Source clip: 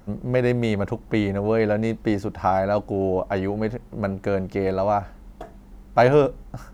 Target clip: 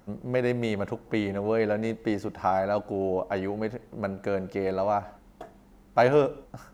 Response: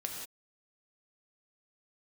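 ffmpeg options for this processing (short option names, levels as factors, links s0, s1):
-filter_complex "[0:a]lowshelf=f=97:g=-11.5,asplit=2[s0][s1];[1:a]atrim=start_sample=2205[s2];[s1][s2]afir=irnorm=-1:irlink=0,volume=0.15[s3];[s0][s3]amix=inputs=2:normalize=0,volume=0.562"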